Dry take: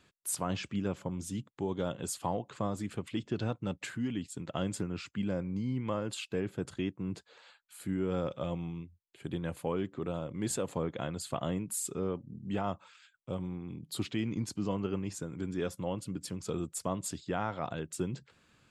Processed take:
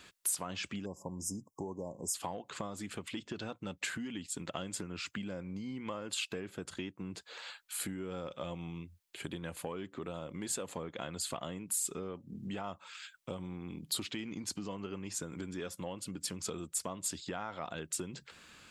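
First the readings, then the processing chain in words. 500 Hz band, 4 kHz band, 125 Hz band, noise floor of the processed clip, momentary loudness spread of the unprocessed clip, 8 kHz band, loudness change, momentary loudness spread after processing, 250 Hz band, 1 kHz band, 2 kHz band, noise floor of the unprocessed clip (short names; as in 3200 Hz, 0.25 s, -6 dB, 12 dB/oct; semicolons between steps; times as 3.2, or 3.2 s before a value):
-6.5 dB, +3.0 dB, -8.5 dB, -68 dBFS, 6 LU, +3.0 dB, -3.5 dB, 8 LU, -6.5 dB, -4.5 dB, +1.0 dB, -70 dBFS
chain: bell 120 Hz -13.5 dB 0.26 oct; in parallel at -10.5 dB: soft clip -28 dBFS, distortion -14 dB; on the sum: compressor 6:1, threshold -42 dBFS, peak gain reduction 14.5 dB; tilt shelf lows -4 dB; spectral delete 0.85–2.14, 1100–4900 Hz; gain +6.5 dB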